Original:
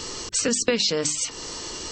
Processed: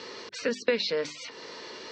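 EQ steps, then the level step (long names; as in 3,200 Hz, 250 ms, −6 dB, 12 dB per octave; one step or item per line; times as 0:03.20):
loudspeaker in its box 320–3,700 Hz, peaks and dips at 320 Hz −8 dB, 770 Hz −8 dB, 1,200 Hz −7 dB, 3,000 Hz −9 dB
0.0 dB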